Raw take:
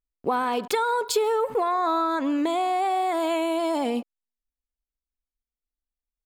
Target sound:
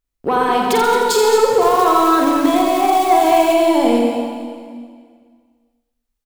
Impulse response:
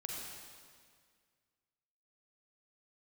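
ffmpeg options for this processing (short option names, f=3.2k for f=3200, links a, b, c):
-filter_complex "[0:a]asoftclip=type=tanh:threshold=-17.5dB,aecho=1:1:46.65|221.6:0.562|0.316,asettb=1/sr,asplit=3[a][b][c];[a]atrim=end=1.614[d];[b]atrim=start=1.61:end=3.54,asetpts=PTS-STARTPTS,afade=t=in:d=0.004:c=qsin,afade=t=out:st=1.926:d=0.004:c=qsin,acrusher=bits=4:mode=log:mix=0:aa=0.000001[e];[c]atrim=start=3.536[f];[d][e]acrossfade=d=0.004:c1=hsin:c2=qsin[g];[g][f]acrossfade=d=0.004:c1=qsin:c2=hsin,asplit=2[h][i];[1:a]atrim=start_sample=2205,lowshelf=f=280:g=5.5,adelay=85[j];[i][j]afir=irnorm=-1:irlink=0,volume=-1.5dB[k];[h][k]amix=inputs=2:normalize=0,volume=7.5dB"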